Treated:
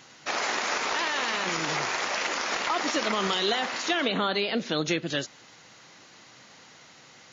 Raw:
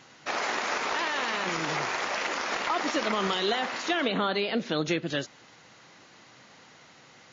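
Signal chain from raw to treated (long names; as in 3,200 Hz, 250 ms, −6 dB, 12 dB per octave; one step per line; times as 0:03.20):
high-shelf EQ 3,900 Hz +7 dB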